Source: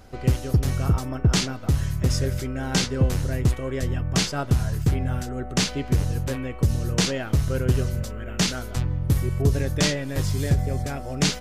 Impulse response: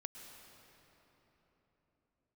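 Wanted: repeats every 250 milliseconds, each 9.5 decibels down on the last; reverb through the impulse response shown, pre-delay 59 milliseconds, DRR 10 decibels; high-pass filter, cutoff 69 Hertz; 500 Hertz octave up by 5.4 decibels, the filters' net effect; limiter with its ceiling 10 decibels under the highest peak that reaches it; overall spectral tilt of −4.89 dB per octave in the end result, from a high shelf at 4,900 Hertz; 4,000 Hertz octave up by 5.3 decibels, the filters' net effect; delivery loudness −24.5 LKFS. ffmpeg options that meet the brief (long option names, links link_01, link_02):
-filter_complex "[0:a]highpass=69,equalizer=frequency=500:width_type=o:gain=6.5,equalizer=frequency=4000:width_type=o:gain=5,highshelf=frequency=4900:gain=3,alimiter=limit=-15dB:level=0:latency=1,aecho=1:1:250|500|750|1000:0.335|0.111|0.0365|0.012,asplit=2[link_01][link_02];[1:a]atrim=start_sample=2205,adelay=59[link_03];[link_02][link_03]afir=irnorm=-1:irlink=0,volume=-6.5dB[link_04];[link_01][link_04]amix=inputs=2:normalize=0,volume=1dB"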